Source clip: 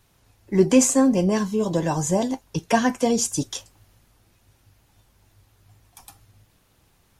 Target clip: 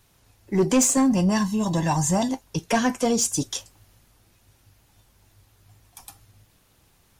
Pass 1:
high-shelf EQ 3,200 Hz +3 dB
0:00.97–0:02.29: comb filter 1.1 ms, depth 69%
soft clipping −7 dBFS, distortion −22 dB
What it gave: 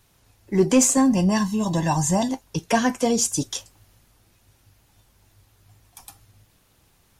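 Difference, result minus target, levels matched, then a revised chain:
soft clipping: distortion −8 dB
high-shelf EQ 3,200 Hz +3 dB
0:00.97–0:02.29: comb filter 1.1 ms, depth 69%
soft clipping −13 dBFS, distortion −14 dB

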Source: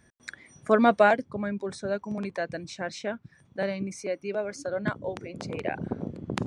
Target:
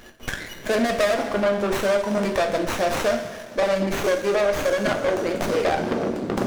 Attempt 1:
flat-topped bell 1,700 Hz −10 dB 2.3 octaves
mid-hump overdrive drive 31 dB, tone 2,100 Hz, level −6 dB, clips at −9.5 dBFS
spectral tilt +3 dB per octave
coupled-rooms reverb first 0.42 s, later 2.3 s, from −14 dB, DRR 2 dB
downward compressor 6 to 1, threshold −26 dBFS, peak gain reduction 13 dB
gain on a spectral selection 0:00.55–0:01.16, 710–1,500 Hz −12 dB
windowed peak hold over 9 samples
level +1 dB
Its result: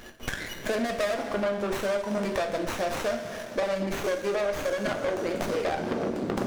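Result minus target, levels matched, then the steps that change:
downward compressor: peak gain reduction +7 dB
change: downward compressor 6 to 1, threshold −17.5 dBFS, peak gain reduction 6 dB

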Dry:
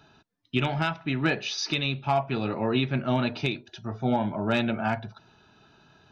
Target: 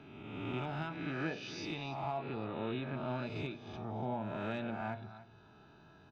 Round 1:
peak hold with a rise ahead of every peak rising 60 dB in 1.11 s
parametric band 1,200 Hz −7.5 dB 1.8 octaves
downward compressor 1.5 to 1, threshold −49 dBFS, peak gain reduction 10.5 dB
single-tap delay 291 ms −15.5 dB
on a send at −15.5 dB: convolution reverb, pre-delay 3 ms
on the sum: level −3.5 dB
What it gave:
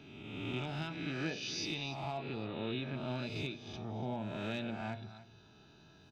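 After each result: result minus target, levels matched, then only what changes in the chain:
4,000 Hz band +6.5 dB; 1,000 Hz band −4.0 dB
add after downward compressor: high-shelf EQ 2,700 Hz −12 dB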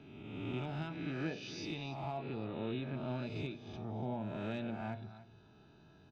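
1,000 Hz band −3.5 dB
remove: parametric band 1,200 Hz −7.5 dB 1.8 octaves

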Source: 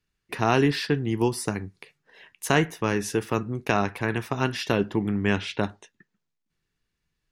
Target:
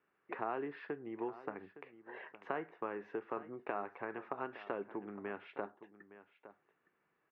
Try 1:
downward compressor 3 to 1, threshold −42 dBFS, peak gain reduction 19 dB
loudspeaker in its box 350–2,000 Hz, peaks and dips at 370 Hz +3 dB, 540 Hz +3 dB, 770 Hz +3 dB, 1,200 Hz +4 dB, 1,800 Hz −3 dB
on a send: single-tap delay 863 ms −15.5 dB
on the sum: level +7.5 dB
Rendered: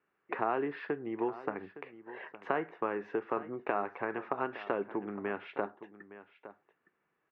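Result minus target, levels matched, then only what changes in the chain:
downward compressor: peak gain reduction −7 dB
change: downward compressor 3 to 1, threshold −52.5 dBFS, peak gain reduction 26 dB

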